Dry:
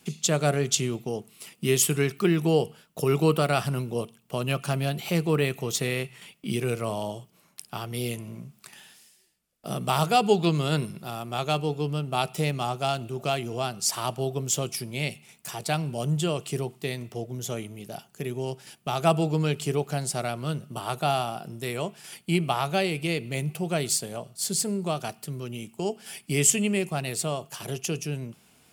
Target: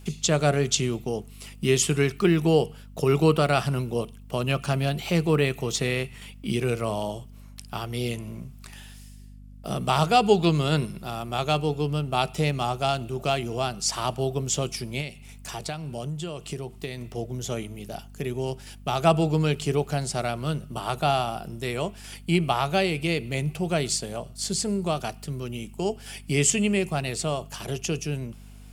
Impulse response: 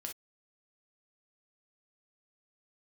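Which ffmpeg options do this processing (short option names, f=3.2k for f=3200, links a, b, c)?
-filter_complex "[0:a]acrossover=split=8300[a][b];[b]acompressor=threshold=-51dB:ratio=4:attack=1:release=60[c];[a][c]amix=inputs=2:normalize=0,aeval=exprs='val(0)+0.00501*(sin(2*PI*50*n/s)+sin(2*PI*2*50*n/s)/2+sin(2*PI*3*50*n/s)/3+sin(2*PI*4*50*n/s)/4+sin(2*PI*5*50*n/s)/5)':c=same,asettb=1/sr,asplit=3[d][e][f];[d]atrim=end=15.004[g];[e]atrim=start=15:end=17.18,asetpts=PTS-STARTPTS,afade=t=in:d=0.004:c=qsin,afade=t=out:st=2.176:d=0.004:c=qsin,acompressor=threshold=-31dB:ratio=12[h];[f]atrim=start=17.176[i];[g][h]acrossfade=d=0.004:c1=hsin:c2=qsin[j];[j][i]acrossfade=d=0.004:c1=qsin:c2=hsin,volume=2dB"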